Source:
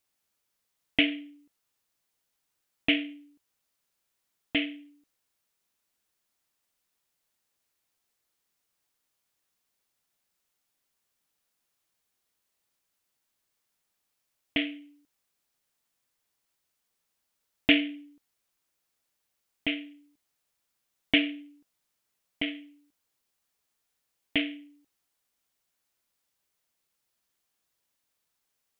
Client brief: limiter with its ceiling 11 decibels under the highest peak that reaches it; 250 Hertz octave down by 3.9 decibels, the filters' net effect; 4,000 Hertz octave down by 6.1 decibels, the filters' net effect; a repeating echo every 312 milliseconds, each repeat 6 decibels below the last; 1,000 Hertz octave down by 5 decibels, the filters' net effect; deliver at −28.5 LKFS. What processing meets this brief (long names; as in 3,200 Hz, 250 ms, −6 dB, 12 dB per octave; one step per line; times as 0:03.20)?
parametric band 250 Hz −4 dB
parametric band 1,000 Hz −8.5 dB
parametric band 4,000 Hz −9 dB
brickwall limiter −22 dBFS
repeating echo 312 ms, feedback 50%, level −6 dB
level +12 dB